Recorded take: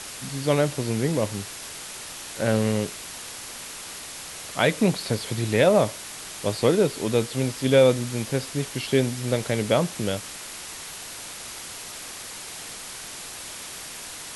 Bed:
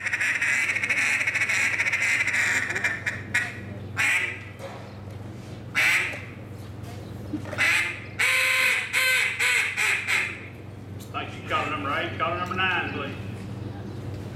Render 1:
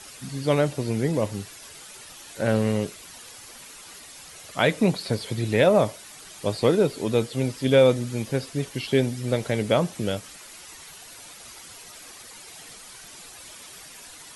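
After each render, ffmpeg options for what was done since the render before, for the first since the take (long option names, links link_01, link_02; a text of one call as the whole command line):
ffmpeg -i in.wav -af "afftdn=noise_reduction=10:noise_floor=-38" out.wav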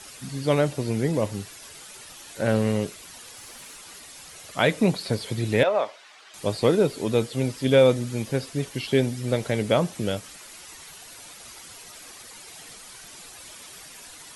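ffmpeg -i in.wav -filter_complex "[0:a]asettb=1/sr,asplit=3[link_01][link_02][link_03];[link_01]atrim=end=3.374[link_04];[link_02]atrim=start=3.37:end=3.77,asetpts=PTS-STARTPTS,afade=type=in:duration=0.004:curve=qsin,afade=type=out:start_time=0.396:duration=0.004:curve=qsin,aeval=exprs='val(0)+0.5*0.00158*sgn(val(0))':channel_layout=same[link_05];[link_03]atrim=start=3.766[link_06];[link_04][link_05]acrossfade=duration=0.004:curve1=hsin:curve2=qsin[link_07];[link_07][link_06]acrossfade=duration=0.004:curve1=qsin:curve2=hsin,asettb=1/sr,asplit=3[link_08][link_09][link_10];[link_08]atrim=end=5.634[link_11];[link_09]atrim=start=5.63:end=6.34,asetpts=PTS-STARTPTS,afade=type=in:duration=0.004:curve=qsin,afade=type=out:start_time=0.706:duration=0.004:curve=qsin,highpass=660,lowpass=3600[link_12];[link_10]atrim=start=6.336[link_13];[link_11][link_12]acrossfade=duration=0.004:curve1=hsin:curve2=qsin[link_14];[link_14][link_13]acrossfade=duration=0.004:curve1=qsin:curve2=hsin" out.wav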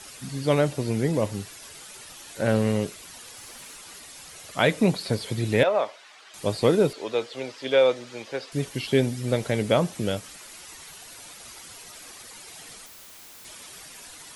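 ffmpeg -i in.wav -filter_complex "[0:a]asettb=1/sr,asplit=3[link_01][link_02][link_03];[link_01]atrim=end=6.934[link_04];[link_02]atrim=start=6.93:end=8.52,asetpts=PTS-STARTPTS,afade=type=in:duration=0.004:curve=qsin,afade=type=out:start_time=1.586:duration=0.004:curve=qsin,acrossover=split=380 6200:gain=0.0891 1 0.1[link_05][link_06][link_07];[link_05][link_06][link_07]amix=inputs=3:normalize=0[link_08];[link_03]atrim=start=8.516[link_09];[link_04][link_08]acrossfade=duration=0.004:curve1=hsin:curve2=qsin[link_10];[link_10][link_09]acrossfade=duration=0.004:curve1=qsin:curve2=hsin,asettb=1/sr,asplit=3[link_11][link_12][link_13];[link_11]atrim=end=12.864[link_14];[link_12]atrim=start=12.86:end=13.45,asetpts=PTS-STARTPTS,afade=type=in:duration=0.004:curve=qsin,afade=type=out:start_time=0.586:duration=0.004:curve=qsin,aeval=exprs='(mod(119*val(0)+1,2)-1)/119':channel_layout=same[link_15];[link_13]atrim=start=13.446[link_16];[link_14][link_15]acrossfade=duration=0.004:curve1=hsin:curve2=qsin[link_17];[link_17][link_16]acrossfade=duration=0.004:curve1=qsin:curve2=hsin" out.wav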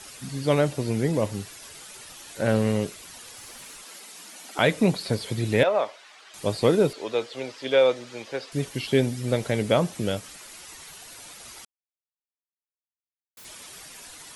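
ffmpeg -i in.wav -filter_complex "[0:a]asettb=1/sr,asplit=3[link_01][link_02][link_03];[link_01]atrim=end=3.854[link_04];[link_02]atrim=start=3.85:end=4.59,asetpts=PTS-STARTPTS,afade=type=in:duration=0.004:curve=qsin,afade=type=out:start_time=0.736:duration=0.004:curve=qsin,afreqshift=160[link_05];[link_03]atrim=start=4.586[link_06];[link_04][link_05]acrossfade=duration=0.004:curve1=hsin:curve2=qsin[link_07];[link_07][link_06]acrossfade=duration=0.004:curve1=qsin:curve2=hsin,asplit=3[link_08][link_09][link_10];[link_08]atrim=end=11.65,asetpts=PTS-STARTPTS,afade=type=out:start_time=11.646:duration=0.004:curve=hsin[link_11];[link_09]atrim=start=11.65:end=13.37,asetpts=PTS-STARTPTS,volume=0[link_12];[link_10]atrim=start=13.37,asetpts=PTS-STARTPTS,afade=type=in:duration=0.004:curve=hsin[link_13];[link_11][link_12][link_13]concat=n=3:v=0:a=1" out.wav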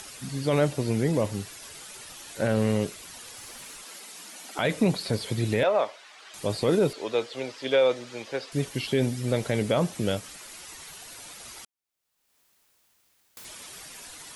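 ffmpeg -i in.wav -af "alimiter=limit=-13.5dB:level=0:latency=1:release=15,acompressor=mode=upward:threshold=-42dB:ratio=2.5" out.wav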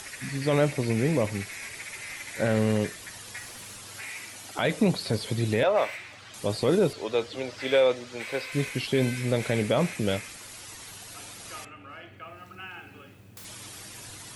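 ffmpeg -i in.wav -i bed.wav -filter_complex "[1:a]volume=-17.5dB[link_01];[0:a][link_01]amix=inputs=2:normalize=0" out.wav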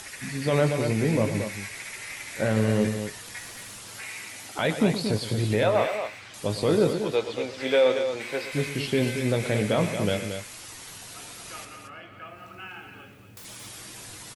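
ffmpeg -i in.wav -filter_complex "[0:a]asplit=2[link_01][link_02];[link_02]adelay=19,volume=-10.5dB[link_03];[link_01][link_03]amix=inputs=2:normalize=0,aecho=1:1:116.6|227.4:0.251|0.398" out.wav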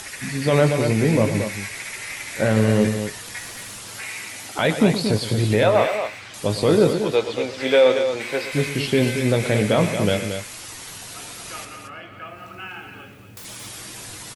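ffmpeg -i in.wav -af "volume=5.5dB" out.wav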